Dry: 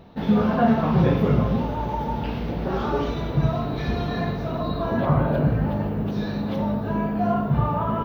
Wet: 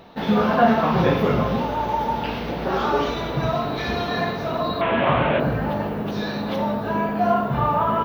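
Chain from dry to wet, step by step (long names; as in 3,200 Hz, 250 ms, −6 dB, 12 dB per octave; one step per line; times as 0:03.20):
0:04.81–0:05.40: linear delta modulator 16 kbit/s, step −23.5 dBFS
low-shelf EQ 340 Hz −12 dB
mains-hum notches 50/100/150 Hz
level +7.5 dB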